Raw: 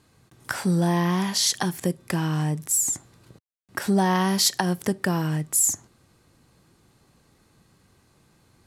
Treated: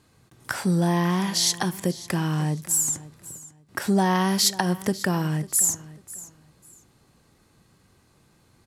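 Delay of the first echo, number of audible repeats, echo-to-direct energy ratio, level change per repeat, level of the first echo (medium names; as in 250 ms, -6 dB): 546 ms, 2, -18.0 dB, -13.0 dB, -18.0 dB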